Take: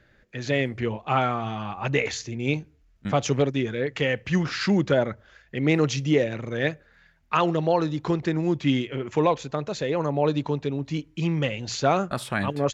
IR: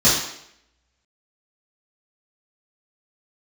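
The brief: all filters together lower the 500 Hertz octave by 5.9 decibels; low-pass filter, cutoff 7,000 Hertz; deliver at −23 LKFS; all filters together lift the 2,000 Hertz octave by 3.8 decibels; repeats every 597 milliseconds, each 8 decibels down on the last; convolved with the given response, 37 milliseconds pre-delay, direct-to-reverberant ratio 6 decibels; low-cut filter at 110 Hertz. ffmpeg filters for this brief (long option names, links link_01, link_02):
-filter_complex "[0:a]highpass=110,lowpass=7000,equalizer=frequency=500:width_type=o:gain=-7.5,equalizer=frequency=2000:width_type=o:gain=5,aecho=1:1:597|1194|1791|2388|2985:0.398|0.159|0.0637|0.0255|0.0102,asplit=2[link_01][link_02];[1:a]atrim=start_sample=2205,adelay=37[link_03];[link_02][link_03]afir=irnorm=-1:irlink=0,volume=-26.5dB[link_04];[link_01][link_04]amix=inputs=2:normalize=0,volume=1.5dB"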